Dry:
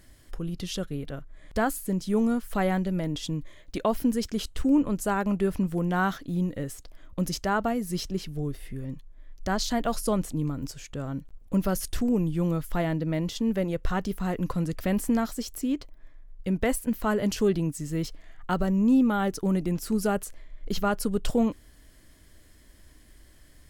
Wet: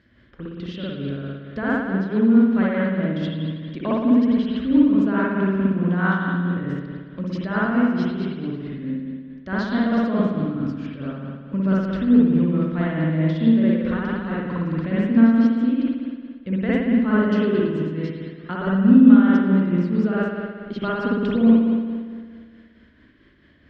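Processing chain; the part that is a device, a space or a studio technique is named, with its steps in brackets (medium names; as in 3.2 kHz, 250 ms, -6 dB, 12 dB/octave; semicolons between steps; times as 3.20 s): combo amplifier with spring reverb and tremolo (spring tank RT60 1.8 s, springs 57 ms, chirp 55 ms, DRR -6.5 dB; tremolo 4.6 Hz, depth 39%; cabinet simulation 80–3900 Hz, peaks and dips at 240 Hz +8 dB, 780 Hz -8 dB, 1.6 kHz +5 dB); trim -2 dB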